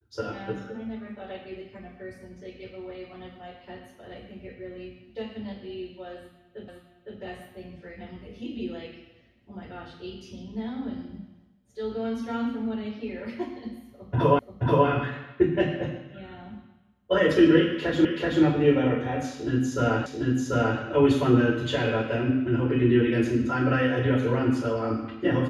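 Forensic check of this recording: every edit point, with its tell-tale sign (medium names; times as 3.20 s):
6.68 s: repeat of the last 0.51 s
14.39 s: repeat of the last 0.48 s
18.05 s: repeat of the last 0.38 s
20.06 s: repeat of the last 0.74 s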